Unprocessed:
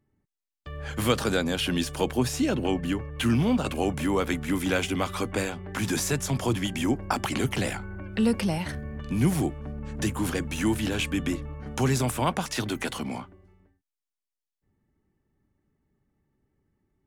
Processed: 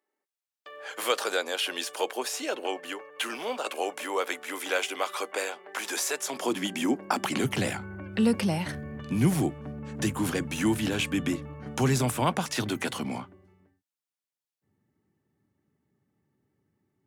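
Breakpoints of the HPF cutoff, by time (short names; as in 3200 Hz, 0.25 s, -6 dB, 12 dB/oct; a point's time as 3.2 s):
HPF 24 dB/oct
6.17 s 440 Hz
6.61 s 210 Hz
7.12 s 210 Hz
7.61 s 95 Hz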